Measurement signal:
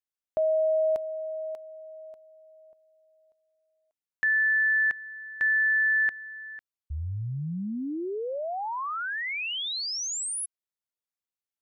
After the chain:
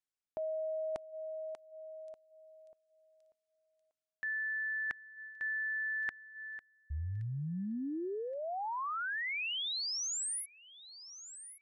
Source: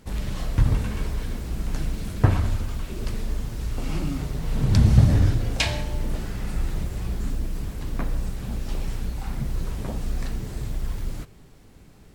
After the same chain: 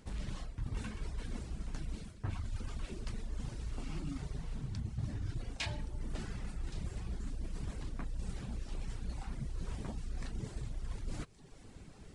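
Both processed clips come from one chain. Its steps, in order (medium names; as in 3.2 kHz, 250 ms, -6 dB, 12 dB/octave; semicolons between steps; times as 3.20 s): reverb removal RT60 0.72 s; dynamic bell 540 Hz, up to -6 dB, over -46 dBFS, Q 2.2; reverse; compression 12:1, threshold -34 dBFS; reverse; feedback echo behind a high-pass 1122 ms, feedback 33%, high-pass 4.6 kHz, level -12.5 dB; resampled via 22.05 kHz; trim -1 dB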